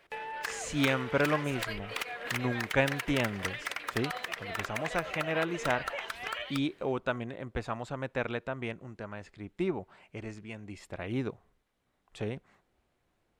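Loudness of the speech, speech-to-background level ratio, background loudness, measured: -34.5 LUFS, 2.0 dB, -36.5 LUFS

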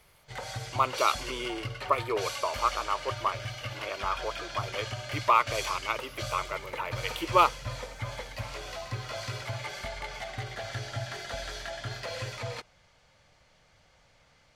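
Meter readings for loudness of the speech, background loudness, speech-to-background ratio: -30.5 LUFS, -37.0 LUFS, 6.5 dB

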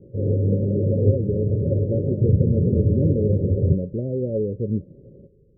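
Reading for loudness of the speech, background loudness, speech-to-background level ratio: -26.5 LUFS, -22.0 LUFS, -4.5 dB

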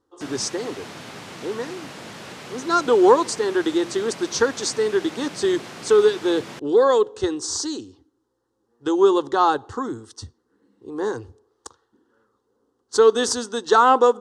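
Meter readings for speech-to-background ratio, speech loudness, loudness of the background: 17.0 dB, -20.5 LUFS, -37.5 LUFS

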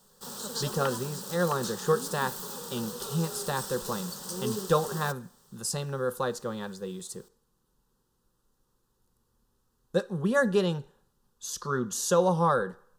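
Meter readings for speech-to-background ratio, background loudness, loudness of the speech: 6.5 dB, -36.5 LUFS, -30.0 LUFS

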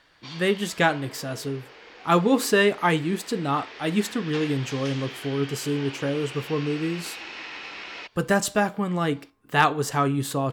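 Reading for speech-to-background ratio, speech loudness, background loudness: 14.0 dB, -25.0 LUFS, -39.0 LUFS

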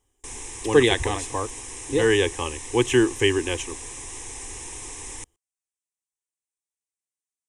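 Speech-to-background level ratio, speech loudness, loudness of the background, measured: 13.0 dB, -22.5 LUFS, -35.5 LUFS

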